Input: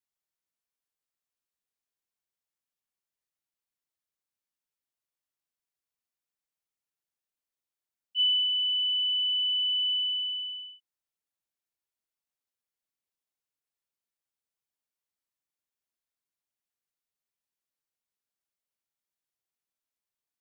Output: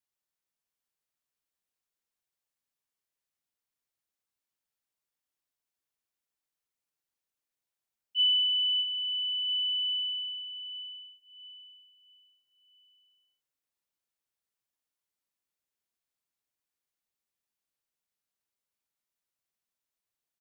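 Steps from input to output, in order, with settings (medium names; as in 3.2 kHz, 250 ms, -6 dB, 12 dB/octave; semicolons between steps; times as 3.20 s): feedback delay 655 ms, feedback 35%, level -6 dB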